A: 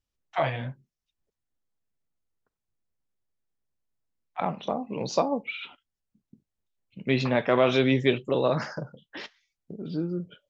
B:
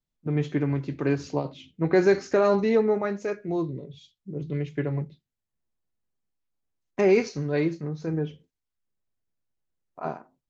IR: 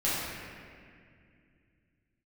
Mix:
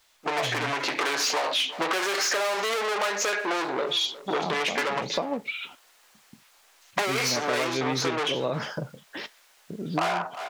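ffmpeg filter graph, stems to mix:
-filter_complex "[0:a]volume=2.5dB[link_01];[1:a]asplit=2[link_02][link_03];[link_03]highpass=frequency=720:poles=1,volume=39dB,asoftclip=type=tanh:threshold=-9.5dB[link_04];[link_02][link_04]amix=inputs=2:normalize=0,lowpass=frequency=6200:poles=1,volume=-6dB,dynaudnorm=framelen=580:gausssize=3:maxgain=6dB,highpass=680,volume=-0.5dB,asplit=2[link_05][link_06];[link_06]volume=-20.5dB,aecho=0:1:358:1[link_07];[link_01][link_05][link_07]amix=inputs=3:normalize=0,acompressor=threshold=-24dB:ratio=5"

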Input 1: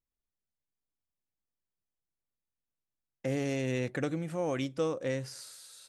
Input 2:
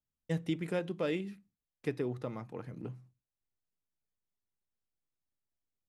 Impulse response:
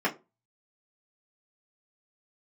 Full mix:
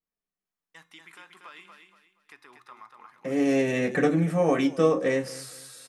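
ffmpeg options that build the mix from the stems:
-filter_complex "[0:a]volume=-0.5dB,afade=type=in:start_time=3.28:duration=0.26:silence=0.421697,asplit=3[link_01][link_02][link_03];[link_02]volume=-3dB[link_04];[link_03]volume=-11dB[link_05];[1:a]highpass=360,lowshelf=frequency=740:width_type=q:width=3:gain=-12.5,alimiter=level_in=10.5dB:limit=-24dB:level=0:latency=1:release=97,volume=-10.5dB,adelay=450,volume=-1.5dB,asplit=2[link_06][link_07];[link_07]volume=-6dB[link_08];[2:a]atrim=start_sample=2205[link_09];[link_04][link_09]afir=irnorm=-1:irlink=0[link_10];[link_05][link_08]amix=inputs=2:normalize=0,aecho=0:1:237|474|711|948:1|0.31|0.0961|0.0298[link_11];[link_01][link_06][link_10][link_11]amix=inputs=4:normalize=0,bandreject=frequency=352.6:width_type=h:width=4,bandreject=frequency=705.2:width_type=h:width=4,bandreject=frequency=1057.8:width_type=h:width=4,bandreject=frequency=1410.4:width_type=h:width=4,bandreject=frequency=1763:width_type=h:width=4,bandreject=frequency=2115.6:width_type=h:width=4,bandreject=frequency=2468.2:width_type=h:width=4,bandreject=frequency=2820.8:width_type=h:width=4,bandreject=frequency=3173.4:width_type=h:width=4,bandreject=frequency=3526:width_type=h:width=4,bandreject=frequency=3878.6:width_type=h:width=4,bandreject=frequency=4231.2:width_type=h:width=4,bandreject=frequency=4583.8:width_type=h:width=4,bandreject=frequency=4936.4:width_type=h:width=4,bandreject=frequency=5289:width_type=h:width=4,bandreject=frequency=5641.6:width_type=h:width=4,bandreject=frequency=5994.2:width_type=h:width=4,bandreject=frequency=6346.8:width_type=h:width=4,bandreject=frequency=6699.4:width_type=h:width=4,bandreject=frequency=7052:width_type=h:width=4,bandreject=frequency=7404.6:width_type=h:width=4,bandreject=frequency=7757.2:width_type=h:width=4,bandreject=frequency=8109.8:width_type=h:width=4,bandreject=frequency=8462.4:width_type=h:width=4,bandreject=frequency=8815:width_type=h:width=4,bandreject=frequency=9167.6:width_type=h:width=4,bandreject=frequency=9520.2:width_type=h:width=4,bandreject=frequency=9872.8:width_type=h:width=4,bandreject=frequency=10225.4:width_type=h:width=4,bandreject=frequency=10578:width_type=h:width=4,bandreject=frequency=10930.6:width_type=h:width=4,bandreject=frequency=11283.2:width_type=h:width=4,bandreject=frequency=11635.8:width_type=h:width=4,bandreject=frequency=11988.4:width_type=h:width=4,bandreject=frequency=12341:width_type=h:width=4,bandreject=frequency=12693.6:width_type=h:width=4,bandreject=frequency=13046.2:width_type=h:width=4,bandreject=frequency=13398.8:width_type=h:width=4,bandreject=frequency=13751.4:width_type=h:width=4,adynamicequalizer=threshold=0.00141:dfrequency=9800:dqfactor=0.81:tfrequency=9800:tqfactor=0.81:attack=5:release=100:ratio=0.375:range=2.5:mode=boostabove:tftype=bell"

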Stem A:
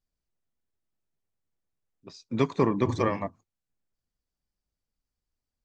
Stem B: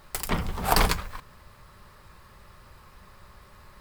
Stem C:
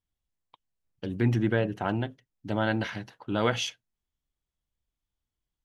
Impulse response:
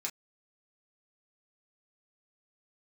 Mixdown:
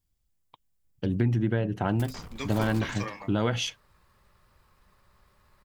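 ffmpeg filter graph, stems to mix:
-filter_complex "[0:a]crystalizer=i=9:c=0,volume=-18dB,asplit=2[link_01][link_02];[link_02]volume=-3.5dB[link_03];[1:a]aeval=exprs='(tanh(28.2*val(0)+0.55)-tanh(0.55))/28.2':channel_layout=same,adelay=1850,volume=-9.5dB[link_04];[2:a]lowshelf=frequency=260:gain=9,acompressor=threshold=-23dB:ratio=6,volume=1.5dB[link_05];[3:a]atrim=start_sample=2205[link_06];[link_03][link_06]afir=irnorm=-1:irlink=0[link_07];[link_01][link_04][link_05][link_07]amix=inputs=4:normalize=0"

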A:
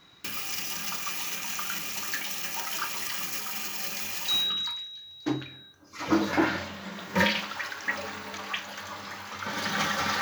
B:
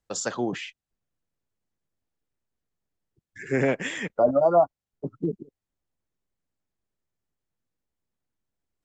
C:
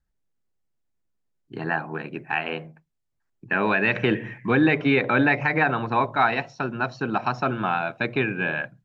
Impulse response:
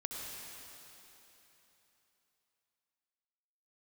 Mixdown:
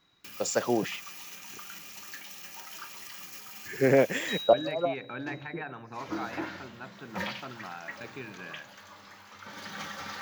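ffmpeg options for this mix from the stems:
-filter_complex "[0:a]volume=-11.5dB[link_01];[1:a]equalizer=frequency=550:width=1.5:gain=6,adelay=300,volume=-1.5dB[link_02];[2:a]volume=-19dB,asplit=3[link_03][link_04][link_05];[link_03]atrim=end=1.58,asetpts=PTS-STARTPTS,afade=type=out:start_time=1.576:duration=0.004:curve=hsin[link_06];[link_04]atrim=start=1.58:end=4.53,asetpts=PTS-STARTPTS,volume=0[link_07];[link_05]atrim=start=4.53,asetpts=PTS-STARTPTS,afade=type=in:duration=0.004:curve=hsin[link_08];[link_06][link_07][link_08]concat=n=3:v=0:a=1,asplit=3[link_09][link_10][link_11];[link_10]volume=-20dB[link_12];[link_11]apad=whole_len=403161[link_13];[link_02][link_13]sidechaincompress=threshold=-55dB:ratio=8:attack=16:release=111[link_14];[3:a]atrim=start_sample=2205[link_15];[link_12][link_15]afir=irnorm=-1:irlink=0[link_16];[link_01][link_14][link_09][link_16]amix=inputs=4:normalize=0"

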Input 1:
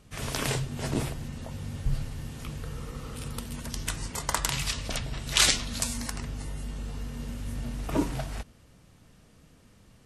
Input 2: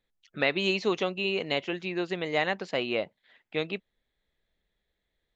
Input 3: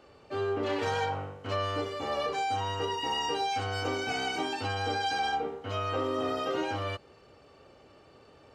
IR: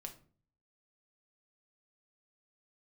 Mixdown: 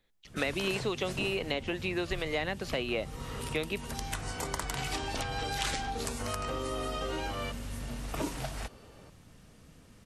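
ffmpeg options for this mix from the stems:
-filter_complex "[0:a]adelay=250,volume=1dB[link_01];[1:a]acontrast=54,volume=0dB,asplit=2[link_02][link_03];[2:a]asoftclip=type=hard:threshold=-22.5dB,adelay=550,volume=0dB[link_04];[link_03]apad=whole_len=401070[link_05];[link_04][link_05]sidechaincompress=threshold=-36dB:ratio=8:attack=16:release=1060[link_06];[link_01][link_02][link_06]amix=inputs=3:normalize=0,acrossover=split=400|2300[link_07][link_08][link_09];[link_07]acompressor=threshold=-37dB:ratio=4[link_10];[link_08]acompressor=threshold=-36dB:ratio=4[link_11];[link_09]acompressor=threshold=-39dB:ratio=4[link_12];[link_10][link_11][link_12]amix=inputs=3:normalize=0"

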